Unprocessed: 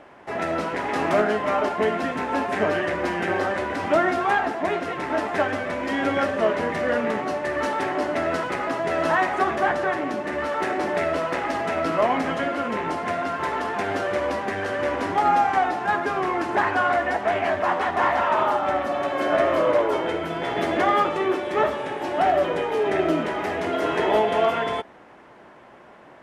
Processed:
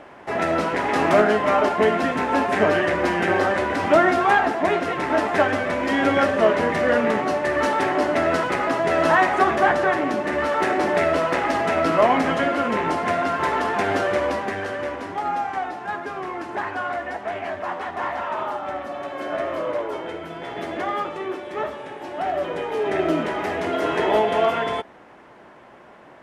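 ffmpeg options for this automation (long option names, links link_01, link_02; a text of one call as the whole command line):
ffmpeg -i in.wav -af "volume=11dB,afade=type=out:start_time=13.98:duration=1.05:silence=0.316228,afade=type=in:start_time=22.21:duration=0.98:silence=0.446684" out.wav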